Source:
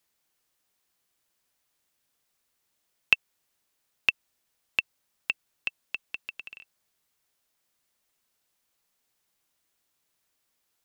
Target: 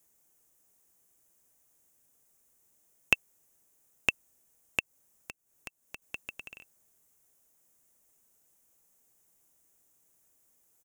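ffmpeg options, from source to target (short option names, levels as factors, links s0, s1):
-filter_complex "[0:a]firequalizer=gain_entry='entry(430,0);entry(1100,-7);entry(4400,-15);entry(6500,2)':delay=0.05:min_phase=1,asettb=1/sr,asplit=3[s0][s1][s2];[s0]atrim=end=4.794[s3];[s1]atrim=start=4.79:end=6.02,asetpts=PTS-STARTPTS,afade=t=in:d=0.004:c=qsin,afade=t=out:st=1.226:d=0.004:c=qsin,acompressor=threshold=0.00398:ratio=12[s4];[s2]atrim=start=6.016[s5];[s3][s4]acrossfade=d=0.004:c1=hsin:c2=qsin[s6];[s6][s5]acrossfade=d=0.004:c1=qsin:c2=hsin,volume=2.24"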